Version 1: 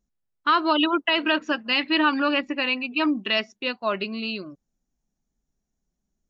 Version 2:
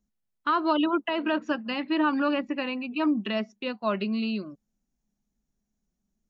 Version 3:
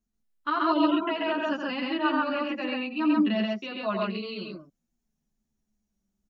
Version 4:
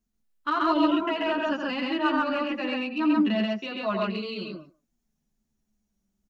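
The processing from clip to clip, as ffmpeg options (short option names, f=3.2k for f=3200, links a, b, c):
-filter_complex "[0:a]equalizer=f=210:w=4.9:g=8.5,acrossover=split=500|1300[a][b][c];[c]acompressor=threshold=-34dB:ratio=5[d];[a][b][d]amix=inputs=3:normalize=0,volume=-2dB"
-filter_complex "[0:a]aecho=1:1:87.46|134.1:0.501|0.891,asplit=2[a][b];[b]adelay=9.6,afreqshift=-0.4[c];[a][c]amix=inputs=2:normalize=1"
-filter_complex "[0:a]asplit=2[a][b];[b]asoftclip=type=tanh:threshold=-29.5dB,volume=-11dB[c];[a][c]amix=inputs=2:normalize=0,asplit=2[d][e];[e]adelay=150,highpass=300,lowpass=3.4k,asoftclip=type=hard:threshold=-21dB,volume=-22dB[f];[d][f]amix=inputs=2:normalize=0"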